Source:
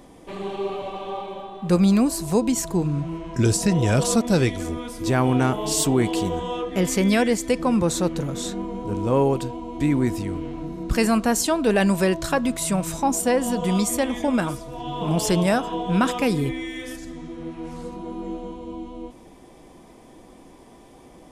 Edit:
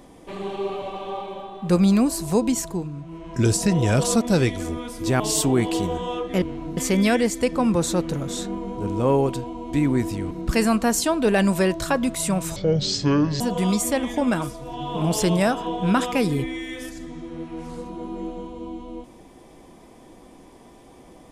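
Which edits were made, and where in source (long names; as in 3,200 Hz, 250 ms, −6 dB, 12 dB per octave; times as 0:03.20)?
0:02.52–0:03.44: duck −9.5 dB, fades 0.38 s
0:05.20–0:05.62: remove
0:10.38–0:10.73: move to 0:06.84
0:12.98–0:13.47: play speed 58%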